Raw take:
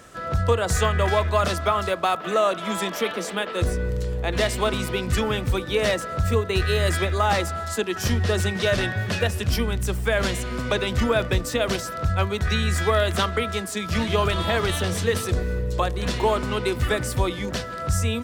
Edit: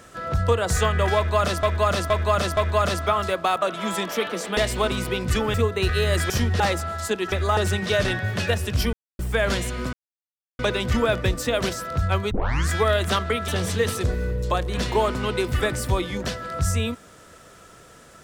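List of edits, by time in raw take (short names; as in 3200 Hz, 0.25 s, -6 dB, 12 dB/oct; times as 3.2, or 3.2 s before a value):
1.16–1.63 loop, 4 plays
2.21–2.46 cut
3.41–4.39 cut
5.36–6.27 cut
7.03–7.28 swap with 8–8.3
9.66–9.92 mute
10.66 insert silence 0.66 s
12.38 tape start 0.38 s
13.55–14.76 cut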